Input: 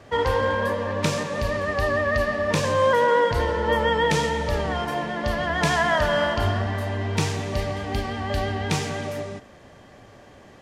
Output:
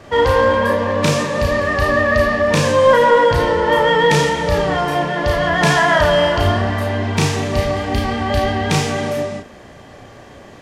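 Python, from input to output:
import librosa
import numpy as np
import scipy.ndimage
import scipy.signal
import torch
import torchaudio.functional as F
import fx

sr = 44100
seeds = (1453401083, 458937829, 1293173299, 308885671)

p1 = fx.doubler(x, sr, ms=34.0, db=-2.5)
p2 = 10.0 ** (-17.0 / 20.0) * np.tanh(p1 / 10.0 ** (-17.0 / 20.0))
p3 = p1 + (p2 * librosa.db_to_amplitude(-6.0))
y = p3 * librosa.db_to_amplitude(3.0)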